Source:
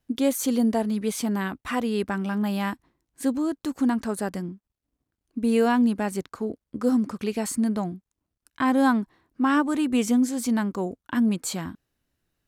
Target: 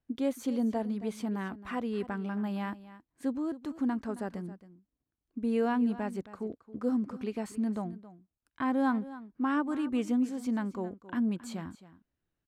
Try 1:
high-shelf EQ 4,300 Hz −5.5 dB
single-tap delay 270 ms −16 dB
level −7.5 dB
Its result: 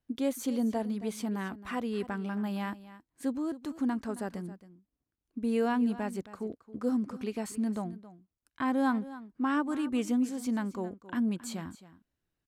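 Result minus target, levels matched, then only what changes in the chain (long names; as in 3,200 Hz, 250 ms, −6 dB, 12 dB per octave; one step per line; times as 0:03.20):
8,000 Hz band +6.5 dB
change: high-shelf EQ 4,300 Hz −14 dB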